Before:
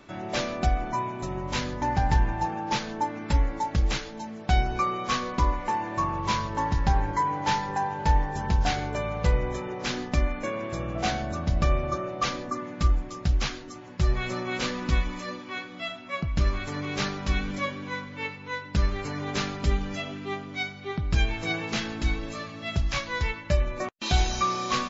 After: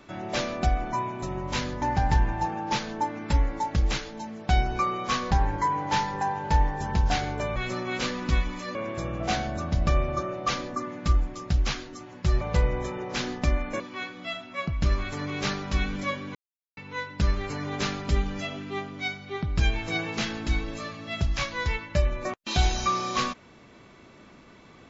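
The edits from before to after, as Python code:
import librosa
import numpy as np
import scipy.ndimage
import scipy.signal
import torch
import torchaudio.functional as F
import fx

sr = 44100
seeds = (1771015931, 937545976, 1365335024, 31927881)

y = fx.edit(x, sr, fx.cut(start_s=5.31, length_s=1.55),
    fx.swap(start_s=9.11, length_s=1.39, other_s=14.16, other_length_s=1.19),
    fx.silence(start_s=17.9, length_s=0.42), tone=tone)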